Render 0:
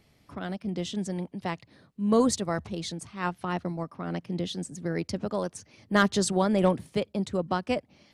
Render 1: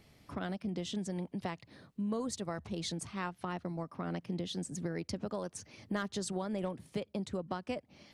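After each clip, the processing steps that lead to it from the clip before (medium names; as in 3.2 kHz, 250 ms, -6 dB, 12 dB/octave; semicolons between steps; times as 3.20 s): compression 6:1, threshold -35 dBFS, peak gain reduction 17 dB; trim +1 dB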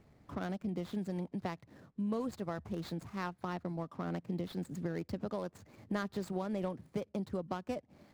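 median filter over 15 samples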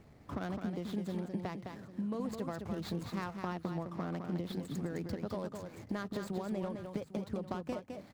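compression, threshold -39 dBFS, peak gain reduction 8.5 dB; on a send: multi-tap echo 210/801 ms -6/-15.5 dB; on the sum: trim +4.5 dB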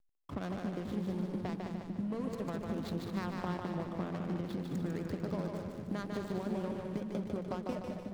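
hysteresis with a dead band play -42.5 dBFS; two-band feedback delay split 320 Hz, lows 551 ms, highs 149 ms, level -4 dB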